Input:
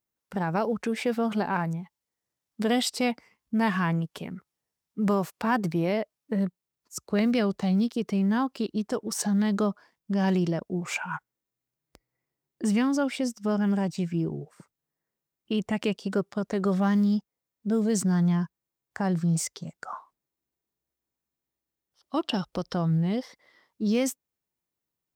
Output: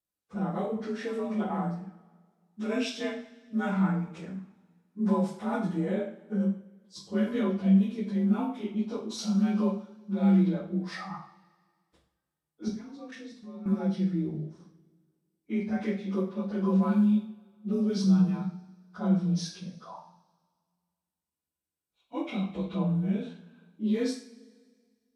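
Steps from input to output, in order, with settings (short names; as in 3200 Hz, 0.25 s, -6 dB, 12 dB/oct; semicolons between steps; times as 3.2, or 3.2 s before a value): inharmonic rescaling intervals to 89%; low shelf 210 Hz +7 dB; 12.68–13.66 level quantiser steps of 19 dB; two-slope reverb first 0.46 s, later 1.8 s, from -20 dB, DRR -2.5 dB; gain -8.5 dB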